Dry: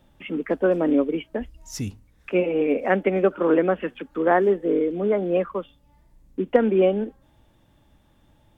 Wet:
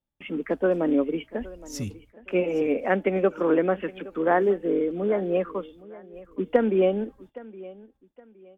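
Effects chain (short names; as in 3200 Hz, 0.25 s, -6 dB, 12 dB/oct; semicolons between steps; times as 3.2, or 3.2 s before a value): gate -52 dBFS, range -28 dB; on a send: feedback echo 0.817 s, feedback 30%, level -19.5 dB; on the sum: gain -2.5 dB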